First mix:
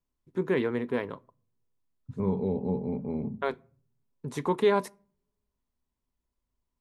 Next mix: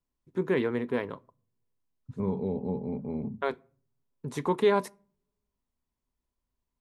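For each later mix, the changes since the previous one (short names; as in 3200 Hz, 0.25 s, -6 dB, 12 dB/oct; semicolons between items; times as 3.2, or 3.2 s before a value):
second voice: send -8.0 dB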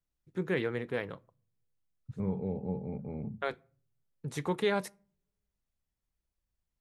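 second voice: add LPF 2700 Hz 24 dB/oct; master: add thirty-one-band EQ 250 Hz -11 dB, 400 Hz -7 dB, 630 Hz -3 dB, 1000 Hz -11 dB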